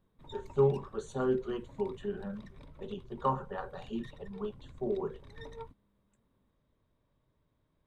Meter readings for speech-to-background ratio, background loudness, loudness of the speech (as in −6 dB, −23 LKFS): 18.0 dB, −53.0 LKFS, −35.0 LKFS